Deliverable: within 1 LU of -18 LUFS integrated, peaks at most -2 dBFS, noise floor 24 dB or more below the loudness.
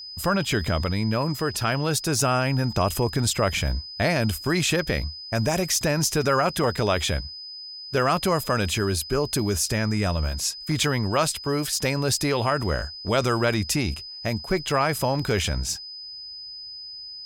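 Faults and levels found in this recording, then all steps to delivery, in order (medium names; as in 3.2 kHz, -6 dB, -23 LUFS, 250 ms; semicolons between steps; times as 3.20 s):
steady tone 5 kHz; tone level -36 dBFS; loudness -24.0 LUFS; peak level -9.5 dBFS; loudness target -18.0 LUFS
-> band-stop 5 kHz, Q 30; trim +6 dB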